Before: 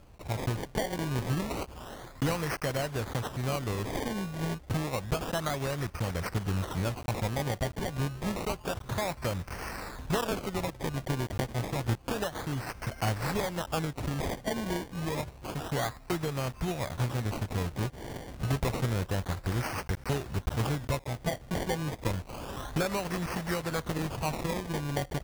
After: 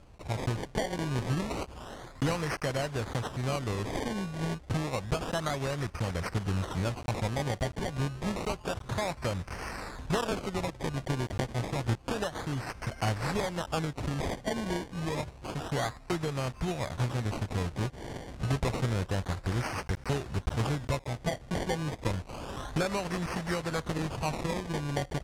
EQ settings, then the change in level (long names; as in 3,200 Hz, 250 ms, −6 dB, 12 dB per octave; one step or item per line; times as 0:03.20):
low-pass filter 9,400 Hz 12 dB per octave
0.0 dB